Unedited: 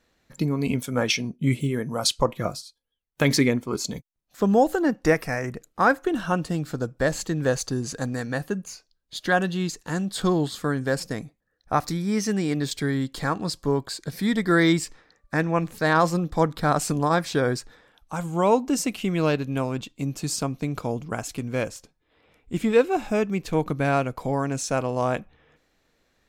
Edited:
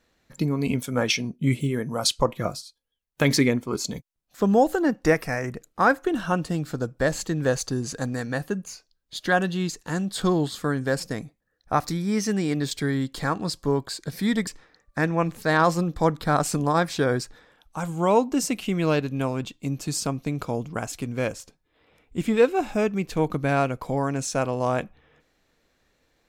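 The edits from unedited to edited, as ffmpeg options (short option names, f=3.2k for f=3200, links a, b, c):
-filter_complex "[0:a]asplit=2[a][b];[a]atrim=end=14.472[c];[b]atrim=start=14.828[d];[c][d]acrossfade=d=0.004:c1=hsin:c2=hsin"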